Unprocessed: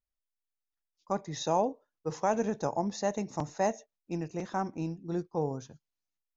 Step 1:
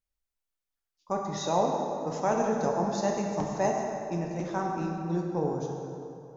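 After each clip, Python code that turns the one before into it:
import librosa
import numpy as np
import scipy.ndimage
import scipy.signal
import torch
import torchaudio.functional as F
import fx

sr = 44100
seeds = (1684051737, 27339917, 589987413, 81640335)

y = fx.rev_plate(x, sr, seeds[0], rt60_s=2.8, hf_ratio=0.6, predelay_ms=0, drr_db=-0.5)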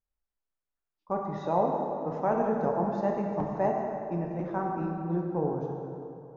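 y = scipy.signal.sosfilt(scipy.signal.butter(2, 1600.0, 'lowpass', fs=sr, output='sos'), x)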